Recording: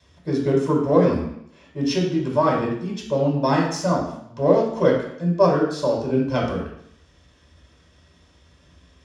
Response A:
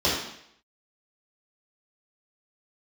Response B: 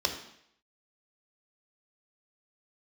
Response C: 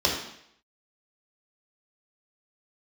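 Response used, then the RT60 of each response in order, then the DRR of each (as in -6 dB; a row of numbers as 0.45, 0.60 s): C; 0.70, 0.70, 0.70 s; -9.0, 3.0, -3.0 dB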